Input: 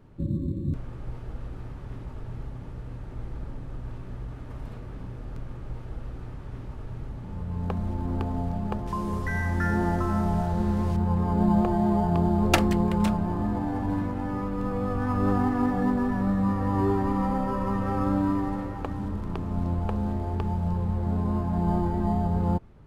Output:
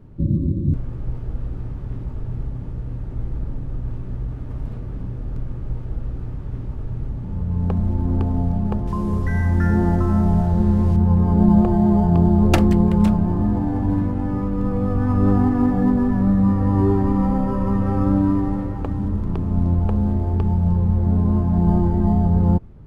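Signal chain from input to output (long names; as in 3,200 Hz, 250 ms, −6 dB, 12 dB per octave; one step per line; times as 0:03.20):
low-shelf EQ 460 Hz +11.5 dB
level −1.5 dB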